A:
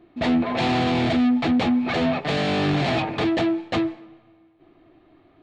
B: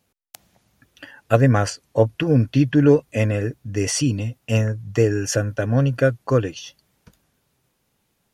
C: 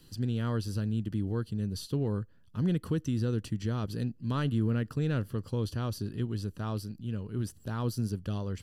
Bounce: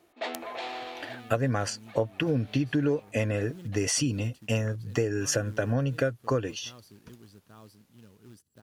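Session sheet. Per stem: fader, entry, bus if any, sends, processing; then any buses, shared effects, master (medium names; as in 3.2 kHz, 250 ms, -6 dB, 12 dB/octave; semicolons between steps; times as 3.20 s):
-4.5 dB, 0.00 s, no send, high-pass 390 Hz 24 dB/octave; auto duck -20 dB, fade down 1.85 s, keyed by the second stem
-0.5 dB, 0.00 s, no send, none
-13.5 dB, 0.90 s, no send, high-pass 140 Hz 6 dB/octave; short-mantissa float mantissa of 2-bit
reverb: none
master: bass shelf 200 Hz -4.5 dB; compression 6:1, threshold -23 dBFS, peak gain reduction 12 dB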